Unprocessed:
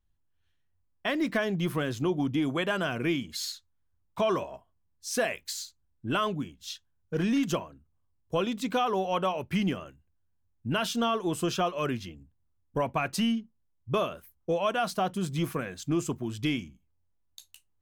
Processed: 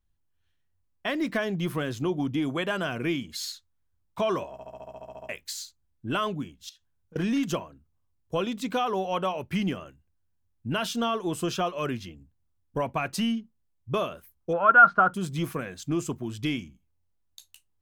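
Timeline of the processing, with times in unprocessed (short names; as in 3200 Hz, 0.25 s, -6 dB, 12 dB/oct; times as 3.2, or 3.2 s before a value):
4.52 stutter in place 0.07 s, 11 plays
6.69–7.16 compressor, threshold -52 dBFS
14.53–15.14 synth low-pass 1400 Hz, resonance Q 14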